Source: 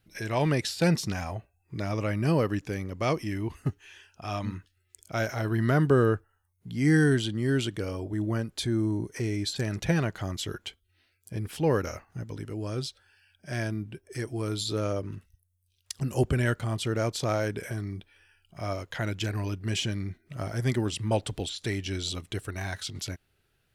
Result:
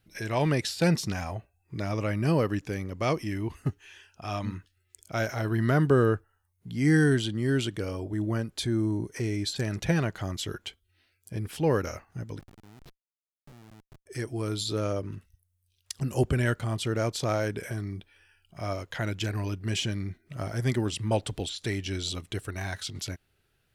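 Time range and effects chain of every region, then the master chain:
12.39–14.06 s: low-pass 3.9 kHz + compression 16:1, threshold -43 dBFS + Schmitt trigger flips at -43 dBFS
whole clip: none

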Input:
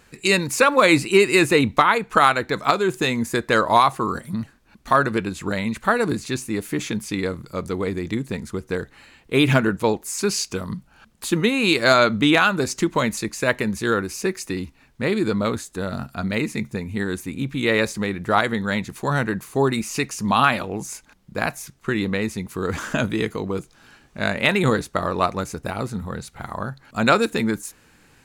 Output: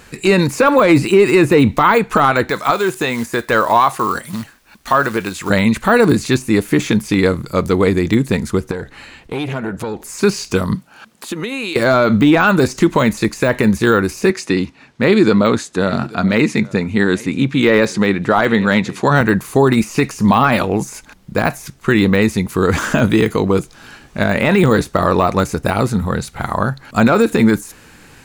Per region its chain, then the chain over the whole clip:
2.50–5.50 s: companded quantiser 6-bit + bass shelf 500 Hz -11.5 dB
8.71–10.09 s: treble shelf 12 kHz -9.5 dB + compression 4:1, threshold -30 dBFS + transformer saturation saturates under 570 Hz
10.75–11.76 s: Bessel high-pass 250 Hz + compression 20:1, threshold -30 dBFS
14.30–19.21 s: band-pass 130–6300 Hz + delay 835 ms -23.5 dB
whole clip: de-esser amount 80%; loudness maximiser +12.5 dB; trim -1 dB

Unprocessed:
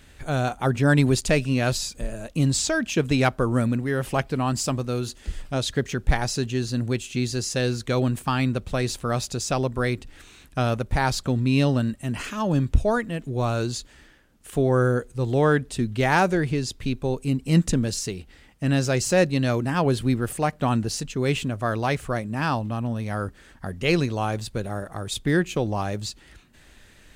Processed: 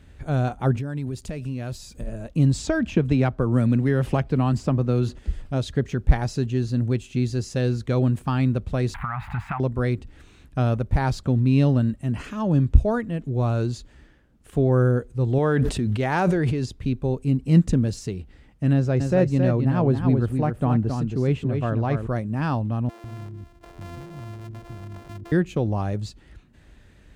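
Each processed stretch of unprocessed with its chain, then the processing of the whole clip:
0.78–2.07 s: treble shelf 10 kHz +10.5 dB + compression 5:1, threshold -29 dBFS
2.67–5.19 s: treble shelf 5.6 kHz -8 dB + three bands compressed up and down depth 100%
8.94–9.60 s: jump at every zero crossing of -34 dBFS + FFT filter 140 Hz 0 dB, 210 Hz -4 dB, 480 Hz -27 dB, 820 Hz +15 dB, 2.1 kHz +15 dB, 3.6 kHz -7 dB, 5.7 kHz -27 dB, 14 kHz -9 dB + compression 4:1, threshold -23 dBFS
15.38–16.66 s: bass shelf 240 Hz -7 dB + decay stretcher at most 21 dB/s
18.73–22.07 s: treble shelf 2.7 kHz -9.5 dB + delay 270 ms -6 dB
22.89–25.32 s: sorted samples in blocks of 128 samples + compression 5:1, threshold -35 dBFS + bands offset in time highs, lows 150 ms, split 370 Hz
whole clip: high-pass 44 Hz; tilt EQ -2.5 dB/octave; trim -3.5 dB

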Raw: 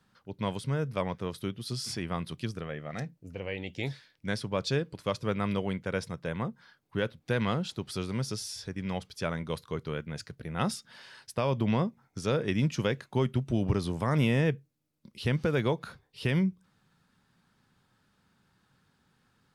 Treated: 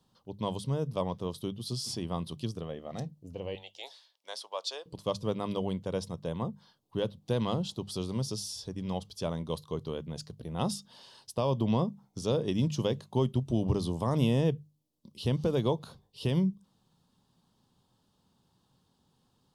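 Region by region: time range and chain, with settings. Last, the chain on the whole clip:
3.55–4.86 s: high-pass 640 Hz 24 dB/octave + treble shelf 11 kHz -4 dB
whole clip: high-order bell 1.8 kHz -14 dB 1.1 oct; hum notches 50/100/150/200 Hz

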